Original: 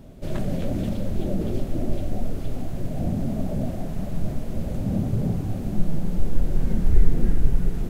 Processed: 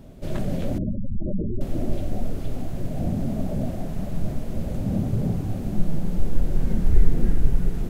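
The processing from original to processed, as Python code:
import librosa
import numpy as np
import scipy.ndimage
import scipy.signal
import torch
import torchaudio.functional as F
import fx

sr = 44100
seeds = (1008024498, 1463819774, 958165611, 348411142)

y = fx.spec_gate(x, sr, threshold_db=-15, keep='strong', at=(0.78, 1.61))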